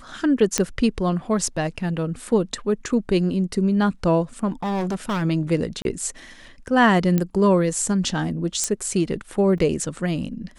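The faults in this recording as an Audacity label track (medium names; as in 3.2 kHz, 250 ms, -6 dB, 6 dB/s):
0.580000	0.580000	pop -4 dBFS
4.480000	5.230000	clipped -21.5 dBFS
5.820000	5.850000	dropout 31 ms
7.180000	7.180000	pop -9 dBFS
8.640000	8.640000	pop -8 dBFS
9.580000	9.580000	dropout 2.8 ms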